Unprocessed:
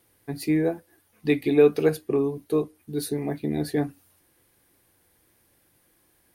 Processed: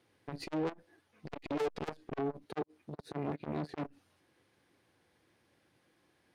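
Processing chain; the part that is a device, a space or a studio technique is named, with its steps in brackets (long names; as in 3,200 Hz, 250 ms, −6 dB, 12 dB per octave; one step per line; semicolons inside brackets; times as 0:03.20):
valve radio (band-pass filter 100–4,800 Hz; tube saturation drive 30 dB, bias 0.8; saturating transformer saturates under 500 Hz)
0:02.43–0:03.86: high-pass filter 82 Hz
level +2 dB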